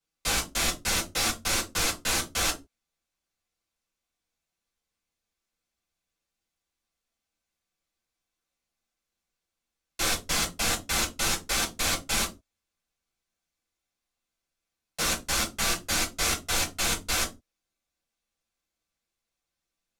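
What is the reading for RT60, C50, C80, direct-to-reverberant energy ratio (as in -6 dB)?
no single decay rate, 14.5 dB, 22.0 dB, -3.5 dB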